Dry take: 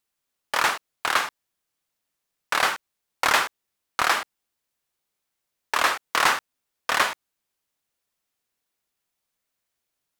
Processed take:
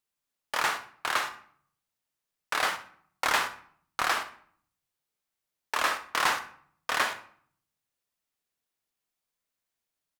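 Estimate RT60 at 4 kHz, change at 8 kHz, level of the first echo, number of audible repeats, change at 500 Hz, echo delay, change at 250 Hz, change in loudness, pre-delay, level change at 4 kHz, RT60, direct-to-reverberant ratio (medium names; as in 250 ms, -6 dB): 0.40 s, -5.5 dB, -15.0 dB, 1, -5.5 dB, 63 ms, -5.0 dB, -5.5 dB, 7 ms, -5.5 dB, 0.55 s, 8.0 dB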